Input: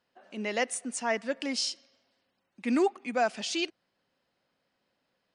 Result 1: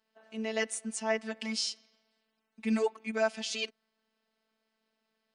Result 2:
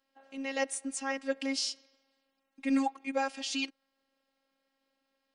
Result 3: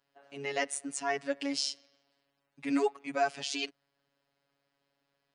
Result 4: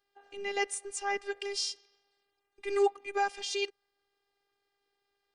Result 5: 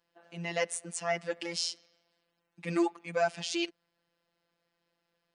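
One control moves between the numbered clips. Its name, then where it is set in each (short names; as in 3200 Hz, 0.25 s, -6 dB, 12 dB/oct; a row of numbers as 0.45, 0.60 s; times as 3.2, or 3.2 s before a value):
robotiser, frequency: 220, 270, 140, 400, 170 Hz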